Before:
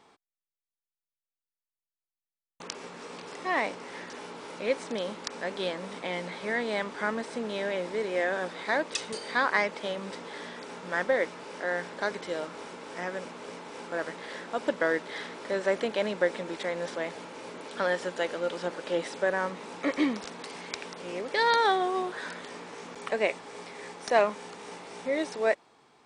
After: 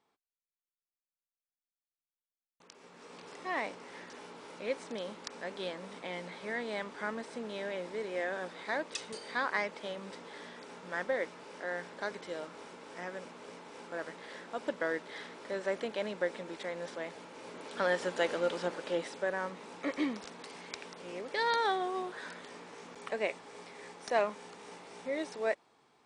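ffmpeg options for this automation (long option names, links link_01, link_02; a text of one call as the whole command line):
ffmpeg -i in.wav -af "afade=type=in:start_time=2.69:duration=0.57:silence=0.281838,afade=type=in:start_time=17.29:duration=1.04:silence=0.446684,afade=type=out:start_time=18.33:duration=0.85:silence=0.473151" out.wav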